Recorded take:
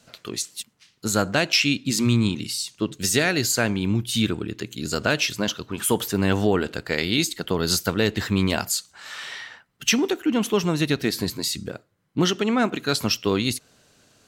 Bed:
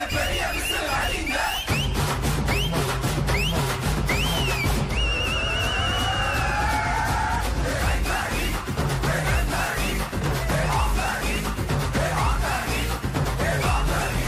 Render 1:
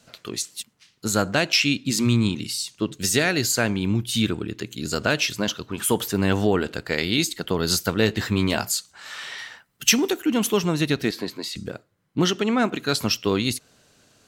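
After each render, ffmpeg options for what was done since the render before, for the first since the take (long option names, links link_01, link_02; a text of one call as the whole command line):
ffmpeg -i in.wav -filter_complex "[0:a]asettb=1/sr,asplit=3[link_01][link_02][link_03];[link_01]atrim=end=7.974[link_04];[link_02]atrim=start=7.97:end=8.72,asetpts=PTS-STARTPTS,afade=type=in:duration=0.004:curve=qsin,afade=type=out:start_time=0.746:duration=0.004:curve=qsin,asplit=2[link_05][link_06];[link_06]adelay=18,volume=-11dB[link_07];[link_05][link_07]amix=inputs=2:normalize=0,atrim=end_sample=33075[link_08];[link_03]atrim=start=8.716[link_09];[link_04][link_08]acrossfade=duration=0.004:curve1=hsin:curve2=qsin[link_10];[link_10][link_09]acrossfade=duration=0.004:curve1=qsin:curve2=hsin,asettb=1/sr,asplit=3[link_11][link_12][link_13];[link_11]atrim=end=9.384[link_14];[link_12]atrim=start=9.38:end=10.59,asetpts=PTS-STARTPTS,afade=type=in:duration=0.004:curve=qsin,afade=type=out:start_time=1.206:duration=0.004:curve=qsin,highshelf=frequency=6600:gain=10.5[link_15];[link_13]atrim=start=10.586[link_16];[link_14][link_15]acrossfade=duration=0.004:curve1=hsin:curve2=qsin[link_17];[link_17][link_16]acrossfade=duration=0.004:curve1=qsin:curve2=hsin,asettb=1/sr,asplit=3[link_18][link_19][link_20];[link_18]atrim=end=11.114[link_21];[link_19]atrim=start=11.11:end=11.56,asetpts=PTS-STARTPTS,afade=type=in:duration=0.004:curve=qsin,afade=type=out:start_time=0.446:duration=0.004:curve=qsin,acrossover=split=220 4200:gain=0.141 1 0.251[link_22][link_23][link_24];[link_22][link_23][link_24]amix=inputs=3:normalize=0[link_25];[link_20]atrim=start=11.556[link_26];[link_21][link_25]acrossfade=duration=0.004:curve1=hsin:curve2=qsin[link_27];[link_27][link_26]acrossfade=duration=0.004:curve1=qsin:curve2=hsin" out.wav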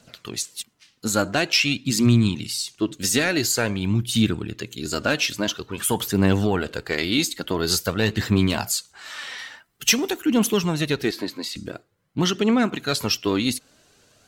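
ffmpeg -i in.wav -af "asoftclip=type=tanh:threshold=-6.5dB,aphaser=in_gain=1:out_gain=1:delay=4.1:decay=0.39:speed=0.48:type=triangular" out.wav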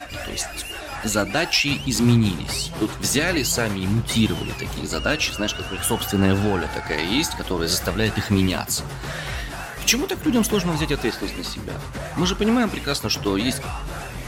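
ffmpeg -i in.wav -i bed.wav -filter_complex "[1:a]volume=-8dB[link_01];[0:a][link_01]amix=inputs=2:normalize=0" out.wav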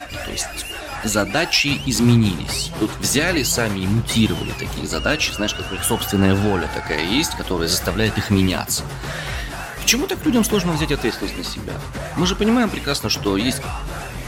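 ffmpeg -i in.wav -af "volume=2.5dB" out.wav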